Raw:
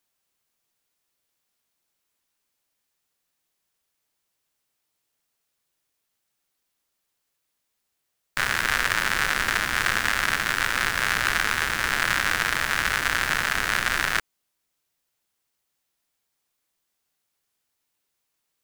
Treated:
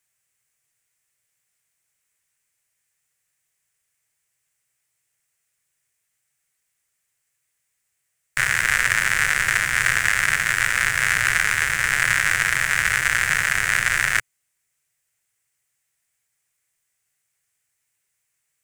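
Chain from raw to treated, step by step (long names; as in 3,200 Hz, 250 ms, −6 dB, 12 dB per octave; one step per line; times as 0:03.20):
octave-band graphic EQ 125/250/1,000/2,000/4,000/8,000 Hz +10/−9/−4/+10/−6/+11 dB
level −1.5 dB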